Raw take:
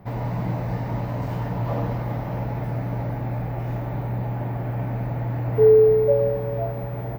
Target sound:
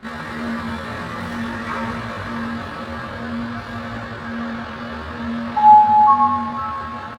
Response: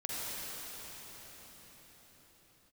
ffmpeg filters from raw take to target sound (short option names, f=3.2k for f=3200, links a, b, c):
-filter_complex "[0:a]equalizer=f=170:w=2.1:g=-13,asetrate=85689,aresample=44100,atempo=0.514651,flanger=delay=18.5:depth=5.5:speed=0.51,asplit=2[a][b];[b]aecho=0:1:195:0.299[c];[a][c]amix=inputs=2:normalize=0,volume=7dB"